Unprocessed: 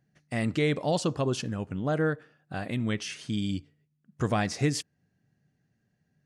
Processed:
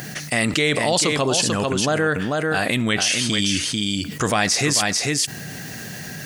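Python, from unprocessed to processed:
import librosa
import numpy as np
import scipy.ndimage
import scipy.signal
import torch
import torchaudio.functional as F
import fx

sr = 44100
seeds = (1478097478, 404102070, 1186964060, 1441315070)

p1 = fx.tilt_eq(x, sr, slope=3.0)
p2 = p1 + fx.echo_single(p1, sr, ms=442, db=-7.5, dry=0)
p3 = fx.env_flatten(p2, sr, amount_pct=70)
y = p3 * librosa.db_to_amplitude(6.0)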